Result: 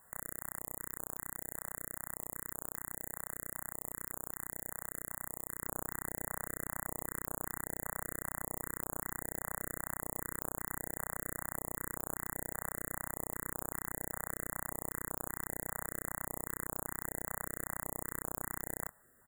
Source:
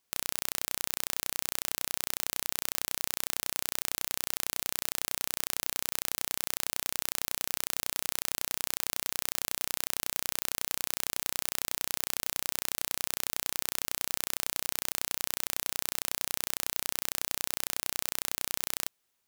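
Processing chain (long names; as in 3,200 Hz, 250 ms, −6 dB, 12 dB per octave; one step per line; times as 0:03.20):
high-shelf EQ 2,900 Hz −6.5 dB, from 0:05.60 −11.5 dB
compressor whose output falls as the input rises −51 dBFS, ratio −1
linear-phase brick-wall band-stop 2,000–6,900 Hz
double-tracking delay 26 ms −11 dB
notch on a step sequencer 5.1 Hz 320–2,000 Hz
level +11 dB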